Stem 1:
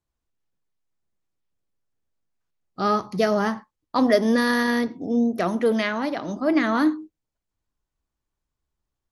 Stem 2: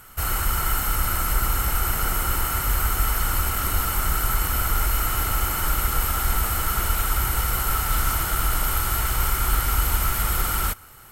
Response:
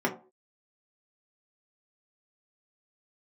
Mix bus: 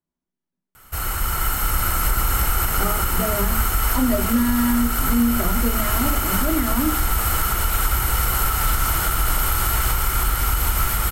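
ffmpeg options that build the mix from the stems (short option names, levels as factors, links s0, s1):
-filter_complex "[0:a]equalizer=f=190:t=o:w=0.79:g=12,volume=0.316,asplit=2[s0][s1];[s1]volume=0.355[s2];[1:a]dynaudnorm=f=460:g=5:m=3.76,adelay=750,volume=0.75[s3];[2:a]atrim=start_sample=2205[s4];[s2][s4]afir=irnorm=-1:irlink=0[s5];[s0][s3][s5]amix=inputs=3:normalize=0,dynaudnorm=f=180:g=11:m=1.5,alimiter=limit=0.335:level=0:latency=1:release=203"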